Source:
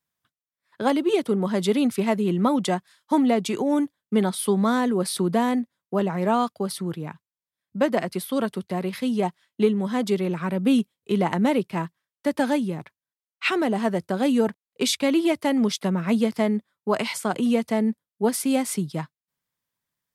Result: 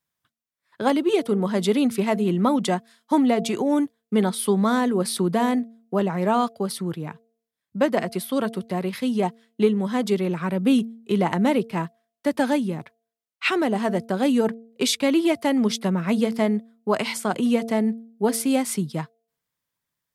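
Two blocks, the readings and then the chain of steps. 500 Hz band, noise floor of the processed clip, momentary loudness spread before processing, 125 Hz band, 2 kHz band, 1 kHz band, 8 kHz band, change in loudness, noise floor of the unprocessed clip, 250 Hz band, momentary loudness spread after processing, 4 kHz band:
+1.0 dB, -85 dBFS, 7 LU, +1.0 dB, +1.0 dB, +1.0 dB, +1.0 dB, +1.0 dB, under -85 dBFS, +1.0 dB, 7 LU, +1.0 dB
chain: de-hum 227.9 Hz, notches 3; trim +1 dB

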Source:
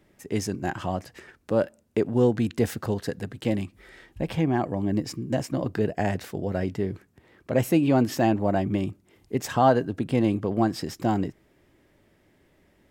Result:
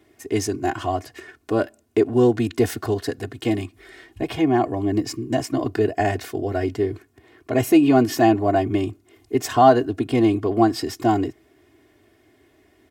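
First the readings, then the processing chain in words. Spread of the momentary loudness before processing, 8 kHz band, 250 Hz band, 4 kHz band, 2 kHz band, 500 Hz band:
10 LU, +5.5 dB, +5.0 dB, +6.0 dB, +4.5 dB, +5.5 dB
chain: high-pass 81 Hz; comb 2.8 ms, depth 96%; trim +2.5 dB

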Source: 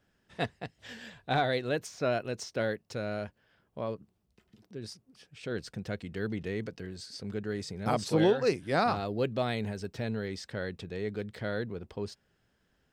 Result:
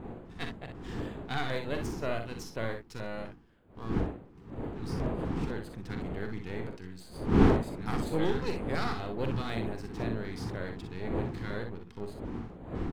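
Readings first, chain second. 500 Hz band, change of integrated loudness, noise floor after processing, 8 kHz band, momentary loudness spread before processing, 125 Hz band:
-3.5 dB, -1.0 dB, -53 dBFS, -5.0 dB, 16 LU, +3.0 dB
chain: partial rectifier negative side -12 dB; wind noise 370 Hz -33 dBFS; LFO notch square 2 Hz 590–5500 Hz; early reflections 44 ms -9 dB, 61 ms -7.5 dB; trim -2 dB

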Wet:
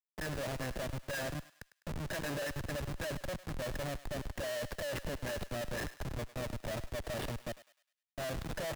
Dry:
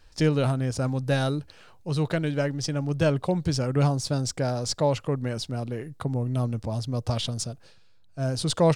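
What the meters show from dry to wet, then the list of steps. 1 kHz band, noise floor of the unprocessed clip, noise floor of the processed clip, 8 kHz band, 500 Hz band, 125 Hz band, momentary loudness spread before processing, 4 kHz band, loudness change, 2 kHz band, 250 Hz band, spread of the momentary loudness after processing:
-11.5 dB, -53 dBFS, under -85 dBFS, -11.0 dB, -12.0 dB, -17.0 dB, 8 LU, -11.0 dB, -12.5 dB, -4.0 dB, -16.0 dB, 5 LU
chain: block-companded coder 5-bit; comb 1.1 ms, depth 72%; dynamic bell 750 Hz, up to -5 dB, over -46 dBFS, Q 4.5; in parallel at 0 dB: compressor with a negative ratio -27 dBFS, ratio -1; on the sum: peak limiter -15.5 dBFS, peak gain reduction 9 dB; two resonant band-passes 1 kHz, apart 1.5 oct; Schmitt trigger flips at -41.5 dBFS; on a send: thinning echo 102 ms, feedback 51%, high-pass 1 kHz, level -12 dB; on the sum: three bands expanded up and down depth 40%; trim +2.5 dB

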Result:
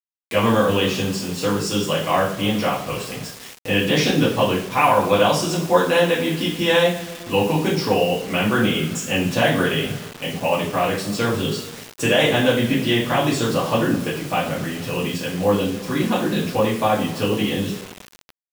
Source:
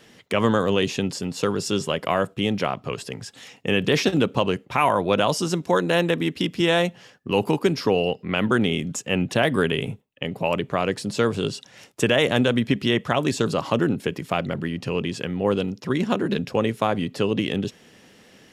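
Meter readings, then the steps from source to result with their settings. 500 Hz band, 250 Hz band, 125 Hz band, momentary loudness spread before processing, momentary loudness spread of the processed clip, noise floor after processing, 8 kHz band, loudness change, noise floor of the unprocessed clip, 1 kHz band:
+3.0 dB, +2.0 dB, +2.5 dB, 8 LU, 9 LU, -45 dBFS, +5.0 dB, +3.0 dB, -54 dBFS, +4.5 dB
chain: two-slope reverb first 0.43 s, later 2.6 s, from -20 dB, DRR -8.5 dB; bit crusher 5-bit; trim -5.5 dB

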